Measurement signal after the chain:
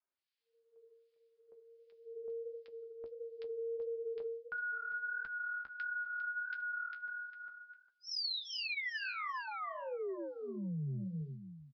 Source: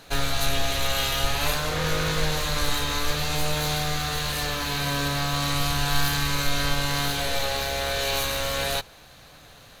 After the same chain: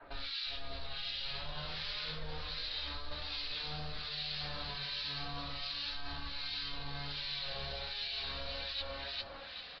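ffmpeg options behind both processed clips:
-filter_complex "[0:a]acrossover=split=1600[a][b];[a]aeval=exprs='val(0)*(1-1/2+1/2*cos(2*PI*1.3*n/s))':c=same[c];[b]aeval=exprs='val(0)*(1-1/2-1/2*cos(2*PI*1.3*n/s))':c=same[d];[c][d]amix=inputs=2:normalize=0,aecho=1:1:402|804|1206:0.376|0.0752|0.015,alimiter=limit=-21.5dB:level=0:latency=1:release=235,lowshelf=f=350:g=-9,aresample=11025,aresample=44100,adynamicequalizer=threshold=0.00562:dfrequency=200:dqfactor=0.72:tfrequency=200:tqfactor=0.72:attack=5:release=100:ratio=0.375:range=1.5:mode=cutabove:tftype=bell,flanger=delay=9.6:depth=5.9:regen=-43:speed=1.5:shape=sinusoidal,acrossover=split=190|3000[e][f][g];[f]acompressor=threshold=-52dB:ratio=3[h];[e][h][g]amix=inputs=3:normalize=0,flanger=delay=3.1:depth=2.5:regen=-33:speed=0.33:shape=triangular,areverse,acompressor=threshold=-50dB:ratio=6,areverse,volume=13dB"

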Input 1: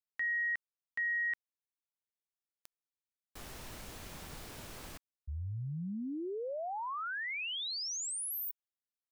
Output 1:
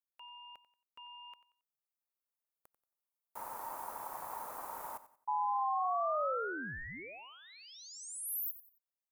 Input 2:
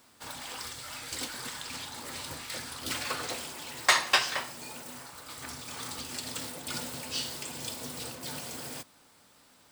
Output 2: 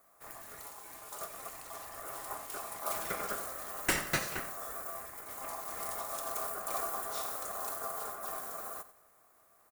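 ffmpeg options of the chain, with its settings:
-af "firequalizer=gain_entry='entry(370,0);entry(570,-6);entry(2400,-23);entry(12000,0)':delay=0.05:min_phase=1,aeval=exprs='val(0)*sin(2*PI*920*n/s)':c=same,lowshelf=f=220:g=-4.5,dynaudnorm=f=470:g=9:m=5.5dB,aecho=1:1:91|182|273:0.178|0.0569|0.0182,volume=3dB"

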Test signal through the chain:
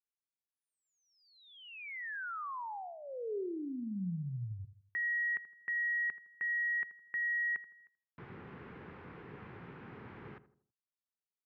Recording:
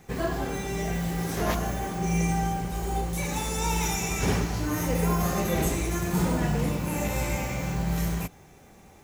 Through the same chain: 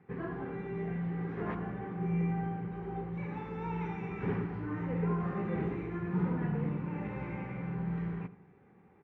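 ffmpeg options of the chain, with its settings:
-filter_complex "[0:a]highpass=110,equalizer=f=120:t=q:w=4:g=4,equalizer=f=180:t=q:w=4:g=5,equalizer=f=410:t=q:w=4:g=5,equalizer=f=630:t=q:w=4:g=-10,lowpass=f=2.1k:w=0.5412,lowpass=f=2.1k:w=1.3066,asplit=2[a][b];[b]adelay=81,lowpass=f=1.2k:p=1,volume=-13.5dB,asplit=2[c][d];[d]adelay=81,lowpass=f=1.2k:p=1,volume=0.44,asplit=2[e][f];[f]adelay=81,lowpass=f=1.2k:p=1,volume=0.44,asplit=2[g][h];[h]adelay=81,lowpass=f=1.2k:p=1,volume=0.44[i];[a][c][e][g][i]amix=inputs=5:normalize=0,volume=-9dB"

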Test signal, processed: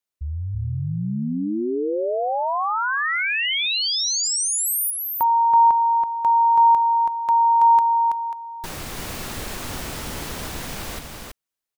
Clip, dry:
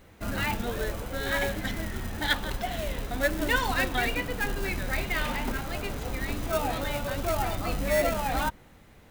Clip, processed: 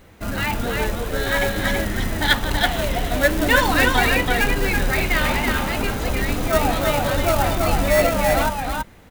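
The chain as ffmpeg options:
-af "dynaudnorm=f=570:g=5:m=3dB,aecho=1:1:328:0.668,volume=5.5dB"

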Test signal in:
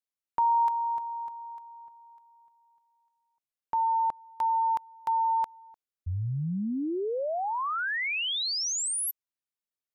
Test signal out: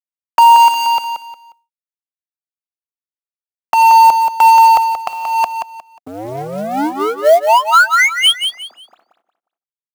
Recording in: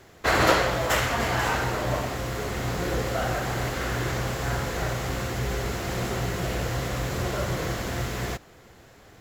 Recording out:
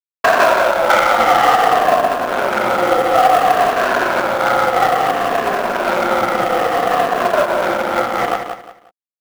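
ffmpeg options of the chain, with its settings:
-filter_complex "[0:a]afftfilt=real='re*pow(10,13/40*sin(2*PI*(1.5*log(max(b,1)*sr/1024/100)/log(2)-(-0.58)*(pts-256)/sr)))':imag='im*pow(10,13/40*sin(2*PI*(1.5*log(max(b,1)*sr/1024/100)/log(2)-(-0.58)*(pts-256)/sr)))':win_size=1024:overlap=0.75,aeval=exprs='sgn(val(0))*max(abs(val(0))-0.0251,0)':c=same,adynamicequalizer=threshold=0.00708:dfrequency=480:dqfactor=2.3:tfrequency=480:tqfactor=2.3:attack=5:release=100:ratio=0.375:range=2.5:mode=boostabove:tftype=bell,acompressor=threshold=-28dB:ratio=5:attack=0.57:release=691:knee=1:detection=rms,highpass=f=240:w=0.5412,highpass=f=240:w=1.3066,equalizer=f=280:t=q:w=4:g=-5,equalizer=f=420:t=q:w=4:g=-9,equalizer=f=730:t=q:w=4:g=10,equalizer=f=1.3k:t=q:w=4:g=8,equalizer=f=3.2k:t=q:w=4:g=4,lowpass=f=3.4k:w=0.5412,lowpass=f=3.4k:w=1.3066,adynamicsmooth=sensitivity=5.5:basefreq=860,acrusher=bits=5:mode=log:mix=0:aa=0.000001,asplit=2[a][b];[b]aecho=0:1:179|358|537:0.422|0.118|0.0331[c];[a][c]amix=inputs=2:normalize=0,alimiter=level_in=22.5dB:limit=-1dB:release=50:level=0:latency=1,volume=-1dB"

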